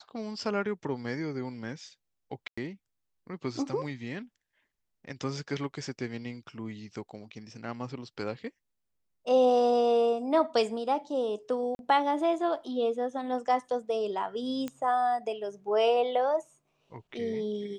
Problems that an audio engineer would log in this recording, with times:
2.48–2.58 gap 95 ms
11.75–11.79 gap 41 ms
14.68 pop -21 dBFS

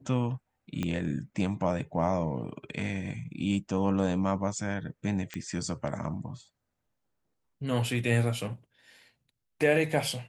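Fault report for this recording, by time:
0.83 pop -18 dBFS
5.34 pop -21 dBFS

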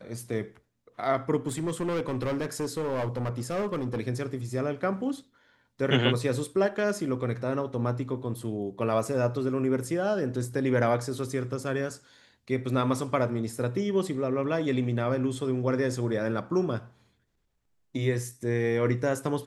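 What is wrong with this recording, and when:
1.47–4 clipped -25.5 dBFS

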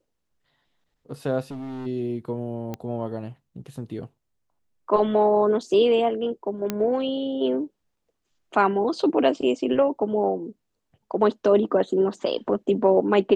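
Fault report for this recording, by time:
1.51–1.87 clipped -31.5 dBFS
2.74 pop -18 dBFS
6.7 pop -11 dBFS

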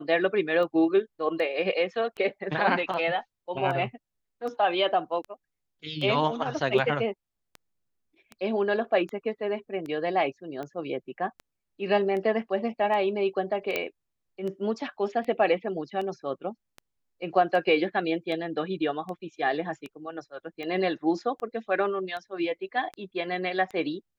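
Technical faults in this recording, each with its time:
tick 78 rpm -25 dBFS
13.76 pop -13 dBFS

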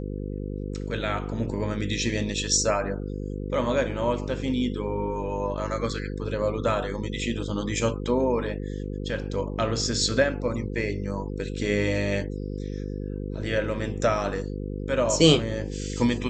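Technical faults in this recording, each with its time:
buzz 50 Hz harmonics 10 -32 dBFS

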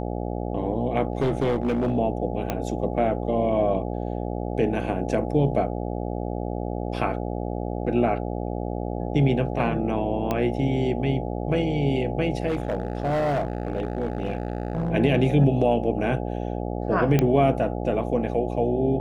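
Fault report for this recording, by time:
buzz 60 Hz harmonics 14 -29 dBFS
1.12–1.98 clipped -18.5 dBFS
2.5 pop -11 dBFS
10.31 pop -12 dBFS
12.47–14.9 clipped -20.5 dBFS
17.19 pop -8 dBFS

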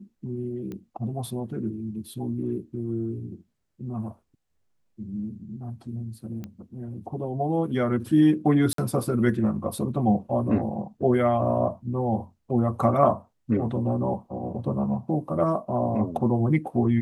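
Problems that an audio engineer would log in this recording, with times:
0.72 pop -25 dBFS
6.44 pop -24 dBFS
8.73–8.78 gap 53 ms

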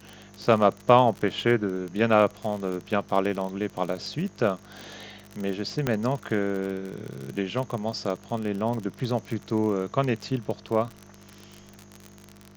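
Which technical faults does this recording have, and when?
crackle 42/s -30 dBFS
5.87 pop -11 dBFS

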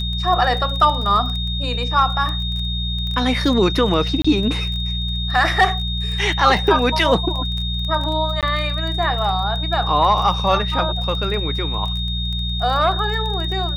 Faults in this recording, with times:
crackle 20/s -25 dBFS
hum 60 Hz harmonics 3 -24 dBFS
tone 3700 Hz -25 dBFS
4.22–4.25 gap 25 ms
8.41–8.43 gap 17 ms

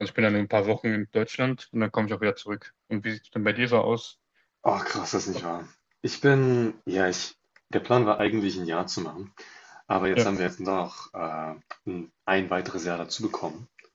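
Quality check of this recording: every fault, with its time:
8.19 gap 4 ms

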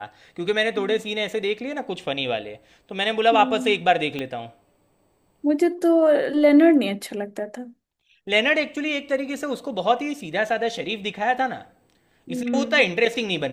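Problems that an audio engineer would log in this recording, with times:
4.19 pop -17 dBFS

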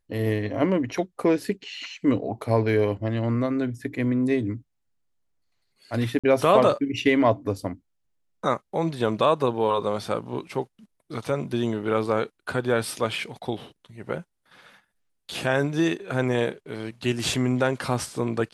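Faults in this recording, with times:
6.19–6.24 gap 46 ms

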